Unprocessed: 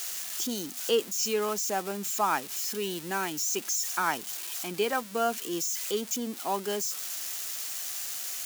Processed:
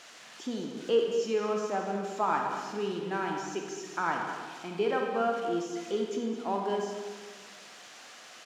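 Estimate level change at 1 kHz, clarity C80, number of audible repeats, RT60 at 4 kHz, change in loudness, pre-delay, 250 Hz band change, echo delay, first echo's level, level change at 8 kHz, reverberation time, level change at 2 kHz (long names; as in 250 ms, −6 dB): 0.0 dB, 3.5 dB, 1, 1.3 s, −2.0 dB, 30 ms, +1.5 dB, 215 ms, −11.0 dB, −17.0 dB, 1.6 s, −2.5 dB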